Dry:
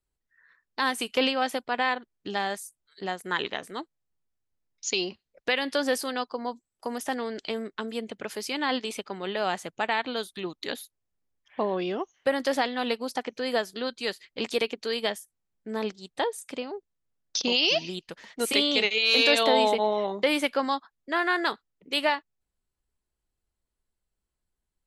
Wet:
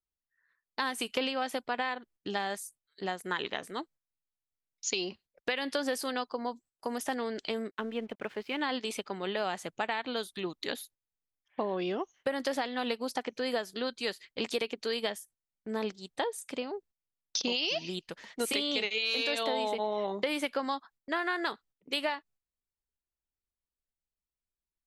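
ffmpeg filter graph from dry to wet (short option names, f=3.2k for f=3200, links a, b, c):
-filter_complex "[0:a]asettb=1/sr,asplit=3[a][b][c];[a]atrim=end=7.714[d];[b]atrim=start=7.71:end=8.61,asetpts=PTS-STARTPTS,afade=t=in:d=0.004:c=qsin,afade=t=out:st=0.896:d=0.004:c=qsin,lowpass=f=3.1k:w=0.5412,lowpass=f=3.1k:w=1.3066,aeval=exprs='sgn(val(0))*max(abs(val(0))-0.0015,0)':c=same[e];[c]atrim=start=8.606[f];[d][e]acrossfade=d=0.004:c1=hsin:c2=qsin[g];[g][f]acrossfade=d=0.004:c1=qsin:c2=hsin,agate=range=-12dB:threshold=-53dB:ratio=16:detection=peak,acompressor=threshold=-26dB:ratio=6,volume=-1.5dB"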